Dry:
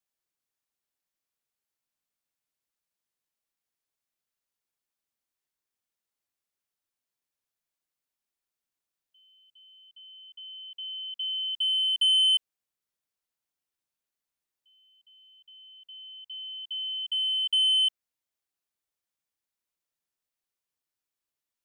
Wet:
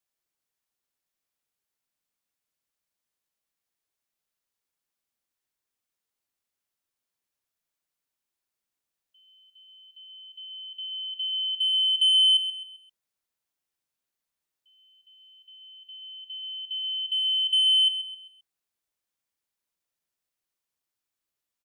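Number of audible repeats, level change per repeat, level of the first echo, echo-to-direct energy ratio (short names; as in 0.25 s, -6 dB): 3, -8.0 dB, -11.0 dB, -10.5 dB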